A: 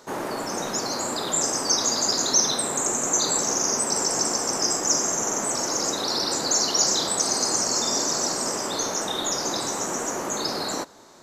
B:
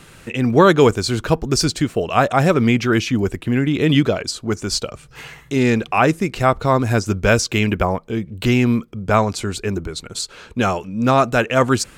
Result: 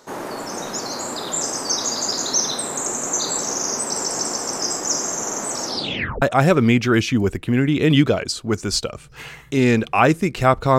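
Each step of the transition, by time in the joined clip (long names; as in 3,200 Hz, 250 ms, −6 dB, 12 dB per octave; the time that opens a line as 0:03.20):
A
0:05.62: tape stop 0.60 s
0:06.22: continue with B from 0:02.21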